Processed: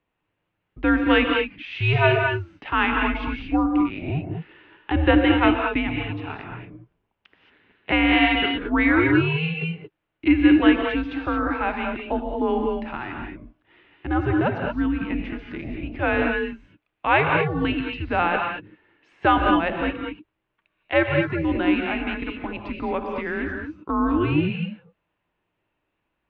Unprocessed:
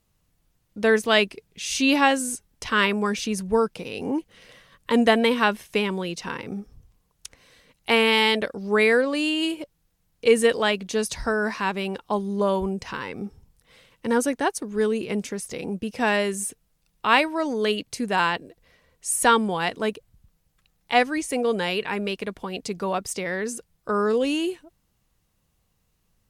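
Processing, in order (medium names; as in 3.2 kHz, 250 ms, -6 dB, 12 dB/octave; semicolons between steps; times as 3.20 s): 5.87–7.92 s: ring modulator 79 Hz; gated-style reverb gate 250 ms rising, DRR 2 dB; mistuned SSB -160 Hz 240–3100 Hz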